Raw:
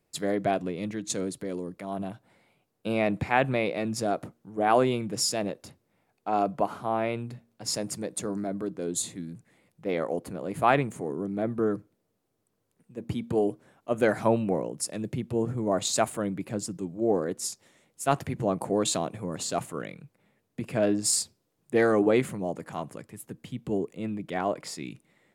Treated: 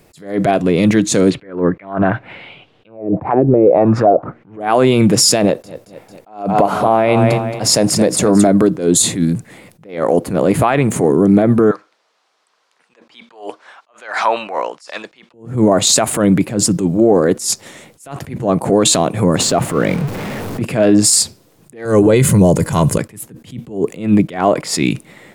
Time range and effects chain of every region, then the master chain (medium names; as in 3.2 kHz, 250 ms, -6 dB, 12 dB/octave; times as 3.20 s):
1.30–4.60 s: peaking EQ 210 Hz -5 dB 0.33 oct + touch-sensitive low-pass 360–3200 Hz down, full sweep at -21 dBFS
5.42–8.47 s: peaking EQ 650 Hz +3.5 dB 1 oct + feedback delay 223 ms, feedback 33%, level -12.5 dB
11.71–15.34 s: Chebyshev band-pass 1–4.9 kHz + compression 2:1, threshold -36 dBFS
19.41–20.62 s: jump at every zero crossing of -41.5 dBFS + treble shelf 2.6 kHz -11 dB
21.85–22.98 s: tone controls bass +12 dB, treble +10 dB + comb 2 ms, depth 41%
whole clip: compression, threshold -27 dBFS; loudness maximiser +25.5 dB; attacks held to a fixed rise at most 140 dB/s; trim -1 dB